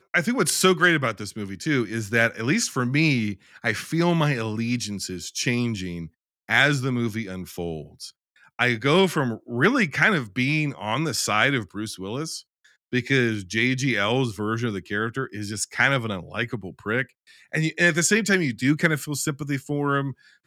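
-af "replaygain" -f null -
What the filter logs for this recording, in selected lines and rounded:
track_gain = +3.1 dB
track_peak = 0.396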